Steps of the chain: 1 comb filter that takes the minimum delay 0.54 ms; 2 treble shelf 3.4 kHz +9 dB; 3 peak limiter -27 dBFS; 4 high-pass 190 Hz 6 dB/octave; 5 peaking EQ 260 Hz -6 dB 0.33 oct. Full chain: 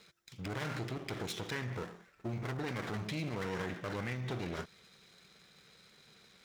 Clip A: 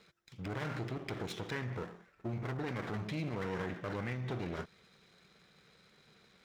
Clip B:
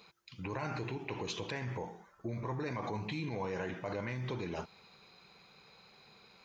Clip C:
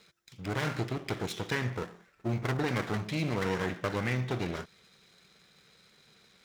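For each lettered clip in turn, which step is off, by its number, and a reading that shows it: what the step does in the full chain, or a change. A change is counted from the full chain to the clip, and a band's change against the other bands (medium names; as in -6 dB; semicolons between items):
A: 2, 8 kHz band -6.5 dB; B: 1, 1 kHz band +3.5 dB; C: 3, mean gain reduction 3.5 dB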